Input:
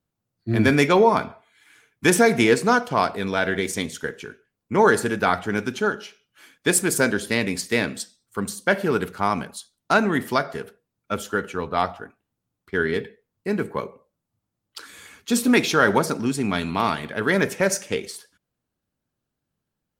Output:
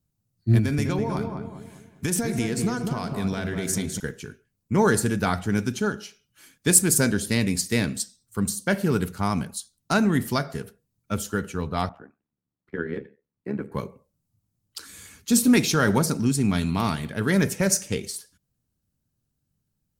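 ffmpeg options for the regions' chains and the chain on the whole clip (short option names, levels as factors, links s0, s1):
-filter_complex "[0:a]asettb=1/sr,asplit=3[s0][s1][s2];[s0]atrim=end=0.584[s3];[s1]atrim=start=0.58:end=4,asetpts=PTS-STARTPTS,afade=t=in:d=0.004:c=qsin,afade=t=out:st=3.416:d=0.004:c=qsin,acompressor=threshold=0.0708:ratio=4:attack=3.2:release=140:knee=1:detection=peak,asplit=2[s4][s5];[s5]adelay=202,lowpass=f=1200:p=1,volume=0.631,asplit=2[s6][s7];[s7]adelay=202,lowpass=f=1200:p=1,volume=0.44,asplit=2[s8][s9];[s9]adelay=202,lowpass=f=1200:p=1,volume=0.44,asplit=2[s10][s11];[s11]adelay=202,lowpass=f=1200:p=1,volume=0.44,asplit=2[s12][s13];[s13]adelay=202,lowpass=f=1200:p=1,volume=0.44,asplit=2[s14][s15];[s15]adelay=202,lowpass=f=1200:p=1,volume=0.44[s16];[s4][s6][s8][s10][s12][s14][s16]amix=inputs=7:normalize=0,atrim=end_sample=150822[s17];[s2]atrim=start=3.996[s18];[s3][s17]acrossfade=d=0.004:c1=hsin:c2=qsin[s19];[s19][s18]acrossfade=d=0.004:c1=qsin:c2=hsin,asettb=1/sr,asplit=3[s20][s21][s22];[s20]atrim=end=11.894[s23];[s21]atrim=start=11.89:end=13.72,asetpts=PTS-STARTPTS,afade=t=in:d=0.004:c=qsin,afade=t=out:st=1.826:d=0.004:c=qsin,tremolo=f=73:d=0.824,acrossover=split=180 2400:gain=0.178 1 0.0708[s24][s25][s26];[s24][s25][s26]amix=inputs=3:normalize=0[s27];[s22]atrim=start=13.716[s28];[s23][s27]acrossfade=d=0.004:c1=hsin:c2=qsin[s29];[s29][s28]acrossfade=d=0.004:c1=qsin:c2=hsin,bass=f=250:g=14,treble=f=4000:g=11,bandreject=f=3400:w=30,volume=0.501"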